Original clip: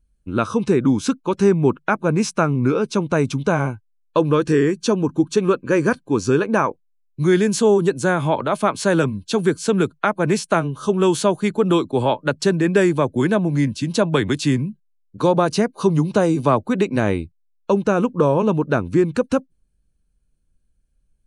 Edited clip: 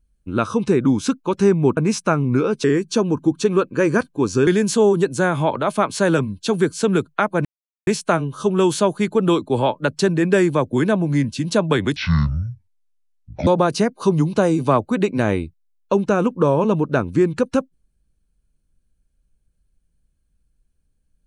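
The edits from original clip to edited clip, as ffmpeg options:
ffmpeg -i in.wav -filter_complex "[0:a]asplit=7[link_01][link_02][link_03][link_04][link_05][link_06][link_07];[link_01]atrim=end=1.772[link_08];[link_02]atrim=start=2.078:end=2.952[link_09];[link_03]atrim=start=4.558:end=6.392[link_10];[link_04]atrim=start=7.318:end=10.3,asetpts=PTS-STARTPTS,afade=type=out:start_time=2.978:duration=0.004:curve=hsin,apad=pad_dur=0.42[link_11];[link_05]atrim=start=10.3:end=14.394,asetpts=PTS-STARTPTS,afade=type=in:duration=0.004:curve=hsin[link_12];[link_06]atrim=start=14.39:end=15.25,asetpts=PTS-STARTPTS,asetrate=25137,aresample=44100[link_13];[link_07]atrim=start=15.246[link_14];[link_08][link_09]acrossfade=duration=0.004:curve1=hsin:curve2=hsin[link_15];[link_15][link_10]acrossfade=duration=0.004:curve1=hsin:curve2=hsin[link_16];[link_11][link_12]concat=n=2:v=0:a=1[link_17];[link_16][link_17]acrossfade=duration=0.004:curve1=hsin:curve2=hsin[link_18];[link_18][link_13]acrossfade=duration=0.004:curve1=hsin:curve2=hsin[link_19];[link_19][link_14]acrossfade=duration=0.004:curve1=hsin:curve2=hsin" out.wav

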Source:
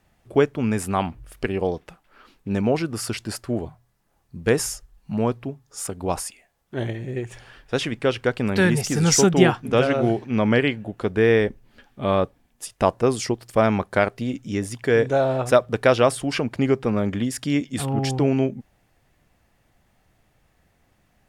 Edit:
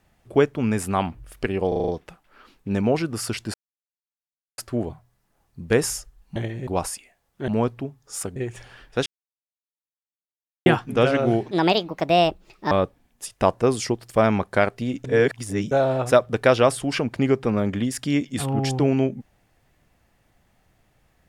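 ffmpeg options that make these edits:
ffmpeg -i in.wav -filter_complex "[0:a]asplit=17[link_01][link_02][link_03][link_04][link_05][link_06][link_07][link_08][link_09][link_10][link_11][link_12][link_13][link_14][link_15][link_16][link_17];[link_01]atrim=end=1.722[link_18];[link_02]atrim=start=1.678:end=1.722[link_19];[link_03]atrim=start=1.678:end=1.722[link_20];[link_04]atrim=start=1.678:end=1.722[link_21];[link_05]atrim=start=1.678:end=1.722[link_22];[link_06]atrim=start=1.678:end=3.34,asetpts=PTS-STARTPTS,afade=type=out:start_time=1.658:duration=0.004:curve=hsin,apad=pad_dur=1.04[link_23];[link_07]atrim=start=3.34:end=5.122,asetpts=PTS-STARTPTS,afade=type=in:duration=0.004:curve=hsin[link_24];[link_08]atrim=start=6.808:end=7.122[link_25];[link_09]atrim=start=5.998:end=6.812[link_26];[link_10]atrim=start=5.118:end=6.002[link_27];[link_11]atrim=start=7.118:end=7.82,asetpts=PTS-STARTPTS,afade=type=out:start_time=0.698:duration=0.004:curve=hsin[link_28];[link_12]atrim=start=7.82:end=9.42,asetpts=PTS-STARTPTS,volume=0[link_29];[link_13]atrim=start=9.42:end=10.274,asetpts=PTS-STARTPTS,afade=type=in:duration=0.004:curve=hsin[link_30];[link_14]atrim=start=10.27:end=12.11,asetpts=PTS-STARTPTS,asetrate=67473,aresample=44100,atrim=end_sample=53035,asetpts=PTS-STARTPTS[link_31];[link_15]atrim=start=12.106:end=14.442[link_32];[link_16]atrim=start=14.438:end=15.112,asetpts=PTS-STARTPTS,areverse[link_33];[link_17]atrim=start=15.108[link_34];[link_18][link_19]acrossfade=duration=0.004:curve1=hsin:curve2=hsin[link_35];[link_35][link_20]acrossfade=duration=0.004:curve1=hsin:curve2=hsin[link_36];[link_36][link_21]acrossfade=duration=0.004:curve1=hsin:curve2=hsin[link_37];[link_37][link_22]acrossfade=duration=0.004:curve1=hsin:curve2=hsin[link_38];[link_23][link_24]concat=n=2:v=0:a=1[link_39];[link_38][link_39]acrossfade=duration=0.004:curve1=hsin:curve2=hsin[link_40];[link_40][link_25]acrossfade=duration=0.004:curve1=hsin:curve2=hsin[link_41];[link_41][link_26]acrossfade=duration=0.004:curve1=hsin:curve2=hsin[link_42];[link_42][link_27]acrossfade=duration=0.004:curve1=hsin:curve2=hsin[link_43];[link_28][link_29][link_30]concat=n=3:v=0:a=1[link_44];[link_43][link_44]acrossfade=duration=0.004:curve1=hsin:curve2=hsin[link_45];[link_45][link_31]acrossfade=duration=0.004:curve1=hsin:curve2=hsin[link_46];[link_46][link_32]acrossfade=duration=0.004:curve1=hsin:curve2=hsin[link_47];[link_47][link_33]acrossfade=duration=0.004:curve1=hsin:curve2=hsin[link_48];[link_48][link_34]acrossfade=duration=0.004:curve1=hsin:curve2=hsin" out.wav

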